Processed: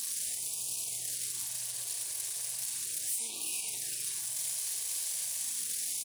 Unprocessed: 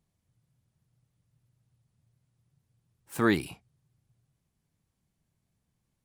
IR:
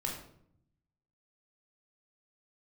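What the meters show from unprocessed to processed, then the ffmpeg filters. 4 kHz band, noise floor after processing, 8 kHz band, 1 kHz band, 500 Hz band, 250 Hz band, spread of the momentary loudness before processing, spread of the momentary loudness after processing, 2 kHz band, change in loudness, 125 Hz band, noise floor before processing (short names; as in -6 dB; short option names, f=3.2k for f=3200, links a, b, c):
+10.0 dB, -39 dBFS, +25.0 dB, -16.0 dB, -21.0 dB, -27.0 dB, 17 LU, 2 LU, -9.5 dB, -5.0 dB, -17.0 dB, -80 dBFS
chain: -filter_complex "[0:a]aeval=exprs='val(0)+0.5*0.0562*sgn(val(0))':c=same,aeval=exprs='0.335*(cos(1*acos(clip(val(0)/0.335,-1,1)))-cos(1*PI/2))+0.0422*(cos(6*acos(clip(val(0)/0.335,-1,1)))-cos(6*PI/2))':c=same,bandreject=f=1.3k:w=5.5[a];[1:a]atrim=start_sample=2205,afade=t=out:st=0.17:d=0.01,atrim=end_sample=7938,asetrate=22491,aresample=44100[b];[a][b]afir=irnorm=-1:irlink=0,asoftclip=type=tanh:threshold=-2.5dB,aderivative,aecho=1:1:437:0.299,acompressor=threshold=-42dB:ratio=4,flanger=delay=3.1:depth=4.3:regen=-82:speed=0.38:shape=triangular,alimiter=level_in=16dB:limit=-24dB:level=0:latency=1,volume=-16dB,highshelf=f=2.9k:g=8.5,afftfilt=real='re*(1-between(b*sr/1024,200*pow(1700/200,0.5+0.5*sin(2*PI*0.36*pts/sr))/1.41,200*pow(1700/200,0.5+0.5*sin(2*PI*0.36*pts/sr))*1.41))':imag='im*(1-between(b*sr/1024,200*pow(1700/200,0.5+0.5*sin(2*PI*0.36*pts/sr))/1.41,200*pow(1700/200,0.5+0.5*sin(2*PI*0.36*pts/sr))*1.41))':win_size=1024:overlap=0.75,volume=8dB"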